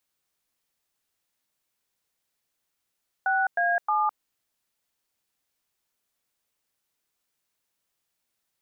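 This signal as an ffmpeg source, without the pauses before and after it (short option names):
-f lavfi -i "aevalsrc='0.0668*clip(min(mod(t,0.312),0.209-mod(t,0.312))/0.002,0,1)*(eq(floor(t/0.312),0)*(sin(2*PI*770*mod(t,0.312))+sin(2*PI*1477*mod(t,0.312)))+eq(floor(t/0.312),1)*(sin(2*PI*697*mod(t,0.312))+sin(2*PI*1633*mod(t,0.312)))+eq(floor(t/0.312),2)*(sin(2*PI*852*mod(t,0.312))+sin(2*PI*1209*mod(t,0.312))))':d=0.936:s=44100"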